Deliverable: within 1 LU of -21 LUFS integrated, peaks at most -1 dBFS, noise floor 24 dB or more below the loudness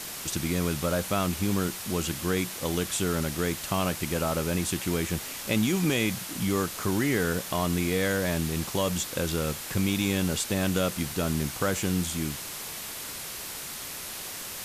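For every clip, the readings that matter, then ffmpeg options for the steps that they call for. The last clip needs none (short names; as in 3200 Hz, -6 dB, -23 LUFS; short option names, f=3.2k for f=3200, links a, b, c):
noise floor -38 dBFS; noise floor target -53 dBFS; loudness -28.5 LUFS; peak -14.0 dBFS; loudness target -21.0 LUFS
-> -af "afftdn=nr=15:nf=-38"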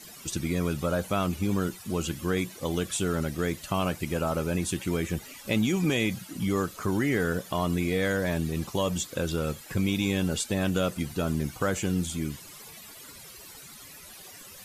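noise floor -47 dBFS; noise floor target -53 dBFS
-> -af "afftdn=nr=6:nf=-47"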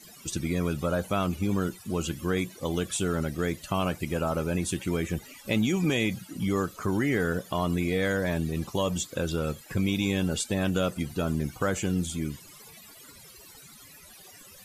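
noise floor -50 dBFS; noise floor target -53 dBFS
-> -af "afftdn=nr=6:nf=-50"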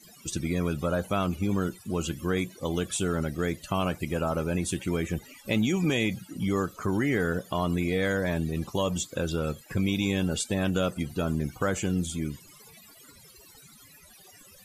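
noise floor -53 dBFS; loudness -29.0 LUFS; peak -15.0 dBFS; loudness target -21.0 LUFS
-> -af "volume=8dB"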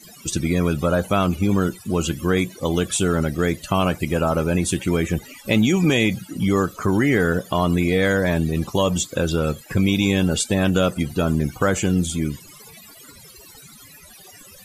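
loudness -21.0 LUFS; peak -7.0 dBFS; noise floor -45 dBFS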